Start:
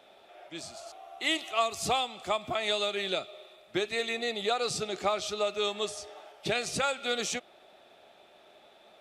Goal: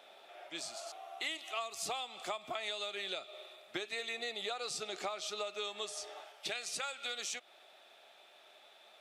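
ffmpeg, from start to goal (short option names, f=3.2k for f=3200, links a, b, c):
-af "asetnsamples=n=441:p=0,asendcmd='6.24 highpass f 1400',highpass=f=670:p=1,acompressor=threshold=-38dB:ratio=6,volume=1.5dB"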